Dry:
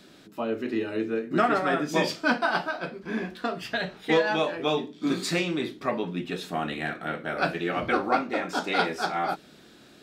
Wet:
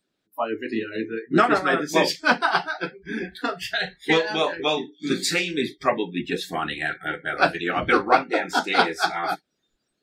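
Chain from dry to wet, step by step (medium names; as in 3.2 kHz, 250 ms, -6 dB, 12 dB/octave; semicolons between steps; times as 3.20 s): spectral noise reduction 29 dB; harmonic-percussive split harmonic -12 dB; 3.28–5.51 s: doubling 37 ms -13.5 dB; trim +8.5 dB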